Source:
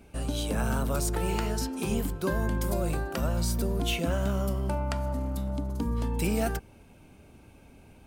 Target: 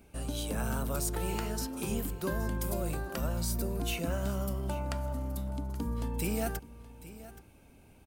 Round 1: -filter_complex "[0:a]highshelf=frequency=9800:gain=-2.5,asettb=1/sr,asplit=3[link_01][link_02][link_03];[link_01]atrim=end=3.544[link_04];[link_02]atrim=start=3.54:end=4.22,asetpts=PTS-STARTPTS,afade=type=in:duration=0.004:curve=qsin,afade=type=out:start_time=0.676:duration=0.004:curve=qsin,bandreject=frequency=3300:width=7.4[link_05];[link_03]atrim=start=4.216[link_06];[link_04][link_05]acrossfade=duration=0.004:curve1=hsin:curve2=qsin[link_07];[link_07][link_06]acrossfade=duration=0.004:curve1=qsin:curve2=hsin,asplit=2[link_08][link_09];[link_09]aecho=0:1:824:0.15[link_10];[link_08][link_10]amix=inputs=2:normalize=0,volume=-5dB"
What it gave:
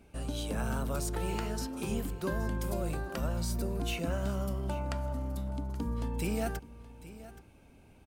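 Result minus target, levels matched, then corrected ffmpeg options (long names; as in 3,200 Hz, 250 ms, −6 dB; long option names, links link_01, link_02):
8,000 Hz band −3.5 dB
-filter_complex "[0:a]highshelf=frequency=9800:gain=8.5,asettb=1/sr,asplit=3[link_01][link_02][link_03];[link_01]atrim=end=3.544[link_04];[link_02]atrim=start=3.54:end=4.22,asetpts=PTS-STARTPTS,afade=type=in:duration=0.004:curve=qsin,afade=type=out:start_time=0.676:duration=0.004:curve=qsin,bandreject=frequency=3300:width=7.4[link_05];[link_03]atrim=start=4.216[link_06];[link_04][link_05]acrossfade=duration=0.004:curve1=hsin:curve2=qsin[link_07];[link_07][link_06]acrossfade=duration=0.004:curve1=qsin:curve2=hsin,asplit=2[link_08][link_09];[link_09]aecho=0:1:824:0.15[link_10];[link_08][link_10]amix=inputs=2:normalize=0,volume=-5dB"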